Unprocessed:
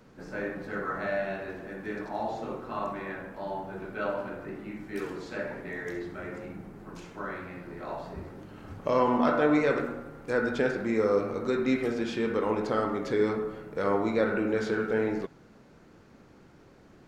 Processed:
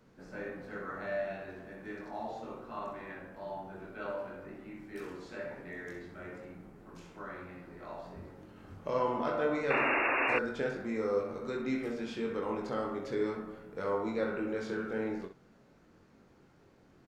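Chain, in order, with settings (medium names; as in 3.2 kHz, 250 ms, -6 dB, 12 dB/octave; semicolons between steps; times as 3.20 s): early reflections 22 ms -5 dB, 64 ms -9.5 dB; painted sound noise, 9.70–10.39 s, 250–2800 Hz -21 dBFS; trim -8.5 dB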